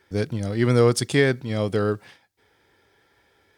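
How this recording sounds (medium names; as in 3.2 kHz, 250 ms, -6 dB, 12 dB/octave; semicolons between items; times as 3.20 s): noise floor -64 dBFS; spectral tilt -6.0 dB/octave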